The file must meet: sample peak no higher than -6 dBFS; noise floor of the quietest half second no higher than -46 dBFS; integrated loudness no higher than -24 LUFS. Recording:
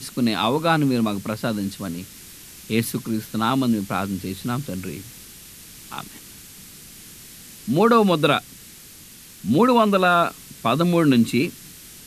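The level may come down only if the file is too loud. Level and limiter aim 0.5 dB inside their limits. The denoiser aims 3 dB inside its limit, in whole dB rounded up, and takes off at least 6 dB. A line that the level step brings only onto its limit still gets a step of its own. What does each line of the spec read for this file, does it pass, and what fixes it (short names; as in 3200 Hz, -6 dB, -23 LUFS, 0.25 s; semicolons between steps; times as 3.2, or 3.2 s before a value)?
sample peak -3.5 dBFS: fail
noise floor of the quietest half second -44 dBFS: fail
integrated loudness -21.0 LUFS: fail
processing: gain -3.5 dB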